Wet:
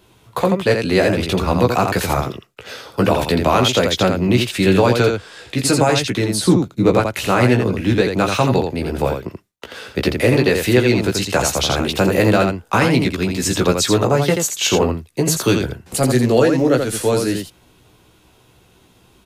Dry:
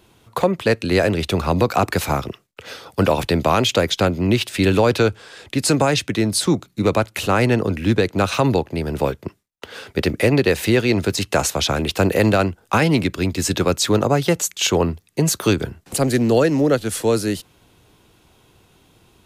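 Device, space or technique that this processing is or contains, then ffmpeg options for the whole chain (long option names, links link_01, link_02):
slapback doubling: -filter_complex "[0:a]asettb=1/sr,asplit=3[link_01][link_02][link_03];[link_01]atrim=end=6.354[link_04];[link_02]atrim=start=6.35:end=6.98,asetpts=PTS-STARTPTS,afade=type=in:duration=0.004:curve=qsin,afade=type=out:start_time=0.626:duration=0.004:curve=qsin,tiltshelf=frequency=970:gain=3.5[link_05];[link_03]atrim=start=6.976[link_06];[link_04][link_05]acrossfade=duration=0.004:curve1=hsin:curve2=qsin[link_07];[link_07][link_06]acrossfade=duration=0.004:curve1=qsin:curve2=hsin,asplit=3[link_08][link_09][link_10];[link_09]adelay=16,volume=-4.5dB[link_11];[link_10]adelay=84,volume=-5dB[link_12];[link_08][link_11][link_12]amix=inputs=3:normalize=0"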